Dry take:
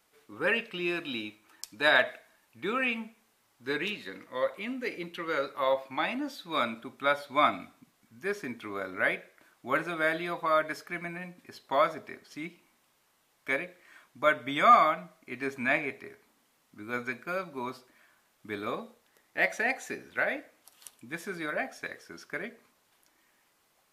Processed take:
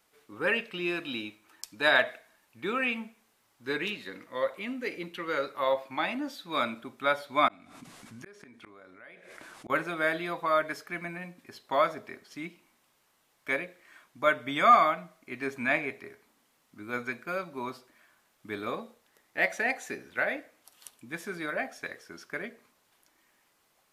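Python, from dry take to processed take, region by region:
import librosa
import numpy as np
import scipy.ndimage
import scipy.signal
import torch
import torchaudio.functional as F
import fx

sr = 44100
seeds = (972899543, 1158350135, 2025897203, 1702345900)

y = fx.chain(x, sr, fx.lowpass(hz=11000.0, slope=24),
    fx.gate_flip(shuts_db=-33.0, range_db=-38),
    fx.env_flatten(amount_pct=70), at=(7.48, 9.7))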